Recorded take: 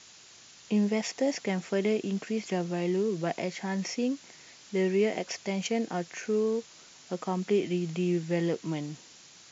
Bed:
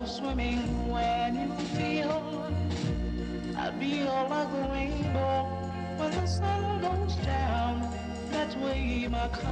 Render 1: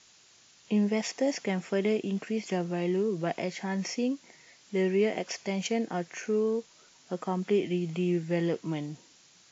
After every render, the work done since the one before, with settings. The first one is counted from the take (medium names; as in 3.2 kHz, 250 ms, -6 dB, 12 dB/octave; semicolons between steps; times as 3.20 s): noise print and reduce 6 dB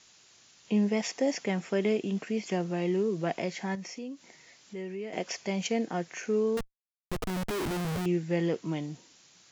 3.75–5.13 s: compression 2:1, threshold -44 dBFS; 6.57–8.06 s: Schmitt trigger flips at -37.5 dBFS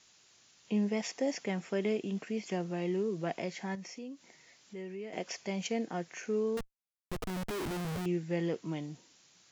trim -4.5 dB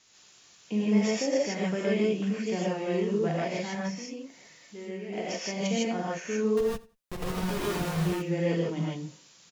feedback delay 89 ms, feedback 23%, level -21 dB; gated-style reverb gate 180 ms rising, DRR -5.5 dB